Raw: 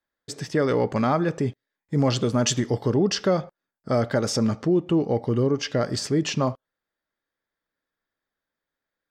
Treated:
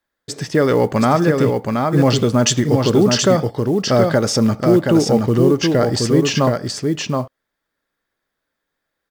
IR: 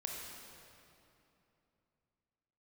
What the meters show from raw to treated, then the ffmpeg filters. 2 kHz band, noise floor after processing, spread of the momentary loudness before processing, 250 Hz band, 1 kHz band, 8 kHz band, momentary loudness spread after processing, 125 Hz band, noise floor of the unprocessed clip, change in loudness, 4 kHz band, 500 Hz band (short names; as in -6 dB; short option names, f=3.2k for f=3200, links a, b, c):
+8.5 dB, -79 dBFS, 7 LU, +8.5 dB, +8.5 dB, +8.5 dB, 7 LU, +8.0 dB, under -85 dBFS, +8.0 dB, +8.5 dB, +8.5 dB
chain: -af "acrusher=bits=8:mode=log:mix=0:aa=0.000001,aecho=1:1:724:0.631,volume=7dB"